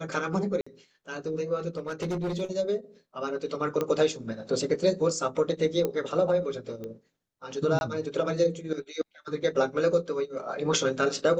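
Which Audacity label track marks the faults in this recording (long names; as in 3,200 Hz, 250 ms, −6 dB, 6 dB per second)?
0.610000	0.670000	drop-out 55 ms
1.770000	2.420000	clipping −26.5 dBFS
3.810000	3.810000	click −15 dBFS
5.850000	5.850000	click −15 dBFS
6.840000	6.840000	click −26 dBFS
7.790000	7.810000	drop-out 21 ms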